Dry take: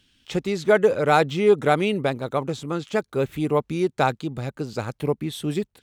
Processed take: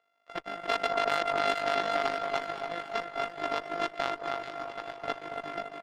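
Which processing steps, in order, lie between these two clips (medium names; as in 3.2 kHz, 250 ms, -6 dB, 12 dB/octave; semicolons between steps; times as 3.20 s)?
sorted samples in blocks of 64 samples; band-pass 570–2800 Hz; comb 6.4 ms, depth 33%; on a send: feedback delay 280 ms, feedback 54%, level -5 dB; on the sum: Chebyshev shaper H 6 -24 dB, 7 -21 dB, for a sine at -2.5 dBFS; echo whose repeats swap between lows and highs 216 ms, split 1.4 kHz, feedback 75%, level -13 dB; peak limiter -15 dBFS, peak gain reduction 11.5 dB; AM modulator 50 Hz, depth 50%; trim +3 dB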